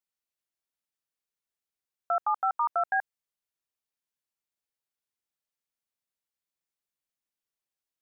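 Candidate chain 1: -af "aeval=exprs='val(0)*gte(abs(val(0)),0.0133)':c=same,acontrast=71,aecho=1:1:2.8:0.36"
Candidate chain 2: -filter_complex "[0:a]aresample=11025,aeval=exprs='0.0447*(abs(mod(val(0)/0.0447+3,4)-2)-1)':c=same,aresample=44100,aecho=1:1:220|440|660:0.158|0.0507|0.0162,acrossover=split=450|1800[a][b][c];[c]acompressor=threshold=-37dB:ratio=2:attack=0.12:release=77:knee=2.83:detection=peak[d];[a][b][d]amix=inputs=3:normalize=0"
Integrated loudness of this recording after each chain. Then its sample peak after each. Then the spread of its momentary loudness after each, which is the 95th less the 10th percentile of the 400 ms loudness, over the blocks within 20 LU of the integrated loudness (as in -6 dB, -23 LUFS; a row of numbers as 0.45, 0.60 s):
-22.0, -37.0 LUFS; -11.0, -24.5 dBFS; 3, 12 LU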